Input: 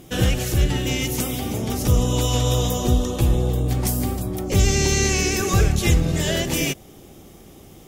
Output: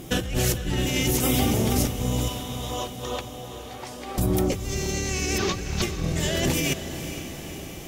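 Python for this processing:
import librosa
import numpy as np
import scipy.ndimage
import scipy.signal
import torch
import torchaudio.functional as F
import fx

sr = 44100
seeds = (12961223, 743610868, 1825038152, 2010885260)

p1 = fx.delta_mod(x, sr, bps=32000, step_db=-19.5, at=(5.38, 5.82))
p2 = fx.over_compress(p1, sr, threshold_db=-26.0, ratio=-1.0)
p3 = fx.bandpass_edges(p2, sr, low_hz=610.0, high_hz=4200.0, at=(2.28, 4.18))
y = p3 + fx.echo_diffused(p3, sr, ms=478, feedback_pct=62, wet_db=-11, dry=0)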